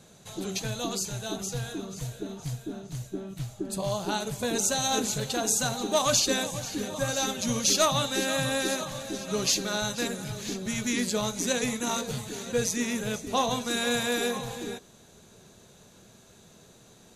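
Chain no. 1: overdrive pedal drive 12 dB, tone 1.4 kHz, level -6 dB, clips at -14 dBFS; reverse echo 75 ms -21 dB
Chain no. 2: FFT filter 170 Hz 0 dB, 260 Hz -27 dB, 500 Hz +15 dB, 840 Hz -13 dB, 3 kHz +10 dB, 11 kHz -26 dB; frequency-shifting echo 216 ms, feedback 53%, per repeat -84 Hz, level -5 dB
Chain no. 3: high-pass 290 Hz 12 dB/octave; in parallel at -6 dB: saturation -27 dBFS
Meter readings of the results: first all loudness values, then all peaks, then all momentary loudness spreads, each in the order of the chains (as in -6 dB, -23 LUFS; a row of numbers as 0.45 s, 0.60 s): -30.0 LUFS, -23.0 LUFS, -26.5 LUFS; -15.5 dBFS, -5.5 dBFS, -11.0 dBFS; 11 LU, 16 LU, 15 LU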